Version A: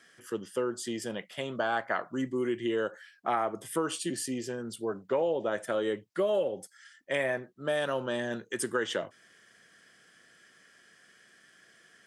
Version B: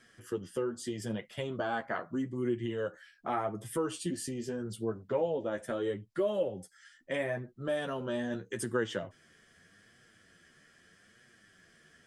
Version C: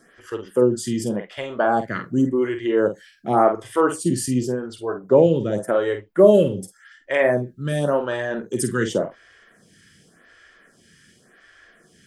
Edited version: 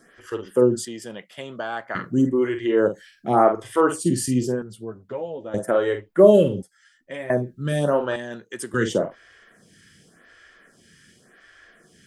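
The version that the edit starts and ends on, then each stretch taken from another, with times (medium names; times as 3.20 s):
C
0.85–1.95 s: from A
4.62–5.54 s: from B
6.62–7.30 s: from B
8.16–8.74 s: from A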